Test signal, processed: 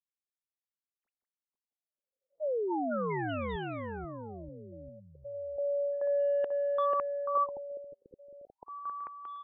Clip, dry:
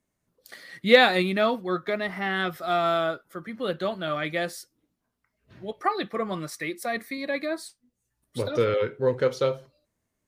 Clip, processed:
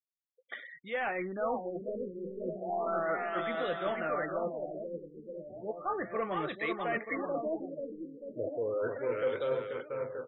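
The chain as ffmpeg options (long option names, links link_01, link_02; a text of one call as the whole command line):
ffmpeg -i in.wav -filter_complex "[0:a]areverse,acompressor=threshold=-31dB:ratio=16,areverse,adynamicequalizer=threshold=0.00631:dfrequency=460:dqfactor=1.3:tfrequency=460:tqfactor=1.3:attack=5:release=100:ratio=0.375:range=1.5:mode=boostabove:tftype=bell,lowpass=7100,afftfilt=real='re*gte(hypot(re,im),0.00355)':imag='im*gte(hypot(re,im),0.00355)':win_size=1024:overlap=0.75,asplit=2[link_01][link_02];[link_02]highpass=frequency=720:poles=1,volume=15dB,asoftclip=type=tanh:threshold=-17dB[link_03];[link_01][link_03]amix=inputs=2:normalize=0,lowpass=frequency=4100:poles=1,volume=-6dB,aecho=1:1:490|931|1328|1685|2007:0.631|0.398|0.251|0.158|0.1,afftfilt=real='re*lt(b*sr/1024,540*pow(4000/540,0.5+0.5*sin(2*PI*0.34*pts/sr)))':imag='im*lt(b*sr/1024,540*pow(4000/540,0.5+0.5*sin(2*PI*0.34*pts/sr)))':win_size=1024:overlap=0.75,volume=-5dB" out.wav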